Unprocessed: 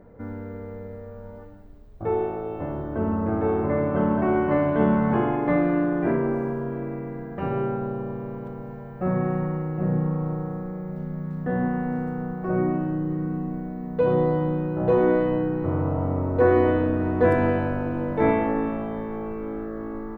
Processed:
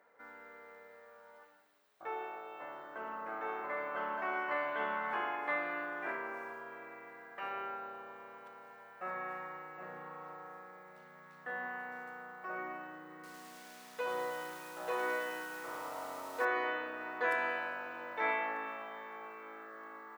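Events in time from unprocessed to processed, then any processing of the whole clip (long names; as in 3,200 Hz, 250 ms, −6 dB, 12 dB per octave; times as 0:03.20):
0:13.13–0:16.45: feedback echo at a low word length 105 ms, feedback 80%, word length 7 bits, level −13 dB
whole clip: high-pass filter 1,400 Hz 12 dB per octave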